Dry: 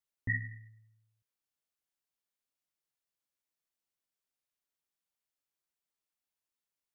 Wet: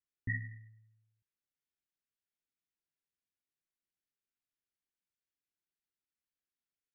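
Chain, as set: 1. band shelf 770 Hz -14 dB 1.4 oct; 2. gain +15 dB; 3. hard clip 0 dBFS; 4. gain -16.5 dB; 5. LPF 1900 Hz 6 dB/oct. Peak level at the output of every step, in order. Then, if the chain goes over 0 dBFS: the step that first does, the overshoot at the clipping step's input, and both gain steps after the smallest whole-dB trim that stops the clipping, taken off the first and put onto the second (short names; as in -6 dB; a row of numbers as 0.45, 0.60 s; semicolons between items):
-19.5, -4.5, -4.5, -21.0, -23.0 dBFS; no overload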